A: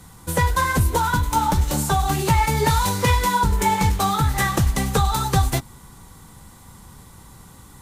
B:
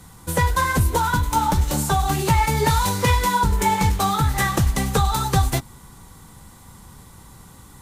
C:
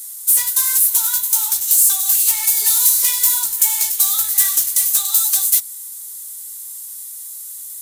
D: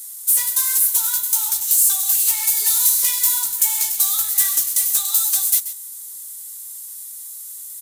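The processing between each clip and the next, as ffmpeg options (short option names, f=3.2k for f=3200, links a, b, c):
-af anull
-af "crystalizer=i=6:c=0,acontrast=79,aderivative,volume=-7dB"
-af "aecho=1:1:133:0.224,volume=-2.5dB"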